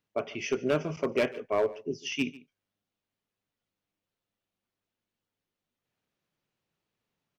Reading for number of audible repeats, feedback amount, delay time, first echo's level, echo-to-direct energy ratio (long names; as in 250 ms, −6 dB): 1, repeats not evenly spaced, 145 ms, −20.5 dB, −20.5 dB